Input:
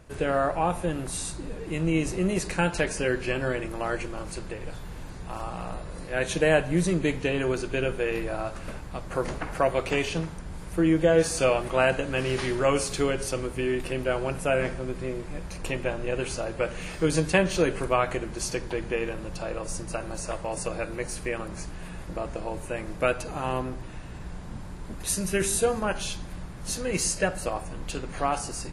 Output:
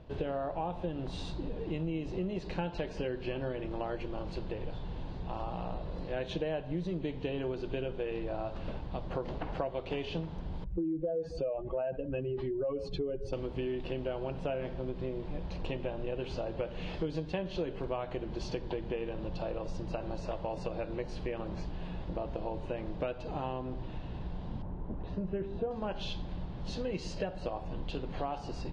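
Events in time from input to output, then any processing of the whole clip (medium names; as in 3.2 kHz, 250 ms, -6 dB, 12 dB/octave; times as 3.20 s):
10.64–13.33 s: spectral contrast enhancement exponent 2
24.62–25.71 s: low-pass 1.3 kHz
whole clip: low-pass 3.8 kHz 24 dB/octave; high-order bell 1.7 kHz -9 dB 1.3 oct; compression, threshold -32 dBFS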